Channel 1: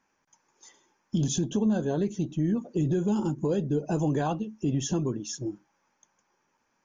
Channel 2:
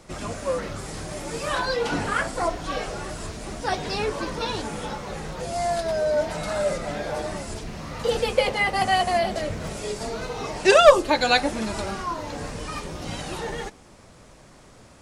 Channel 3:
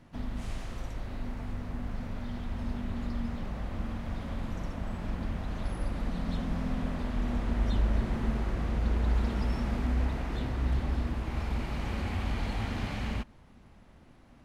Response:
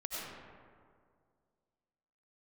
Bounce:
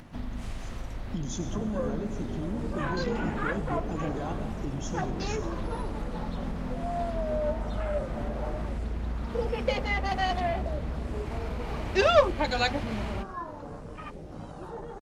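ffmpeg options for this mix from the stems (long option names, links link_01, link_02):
-filter_complex "[0:a]volume=-7.5dB,asplit=2[link_01][link_02];[link_02]volume=-8dB[link_03];[1:a]afwtdn=0.0224,adelay=1300,volume=-7.5dB[link_04];[2:a]volume=2dB[link_05];[link_01][link_05]amix=inputs=2:normalize=0,acompressor=threshold=-30dB:ratio=6,volume=0dB[link_06];[3:a]atrim=start_sample=2205[link_07];[link_03][link_07]afir=irnorm=-1:irlink=0[link_08];[link_04][link_06][link_08]amix=inputs=3:normalize=0,acompressor=mode=upward:threshold=-42dB:ratio=2.5"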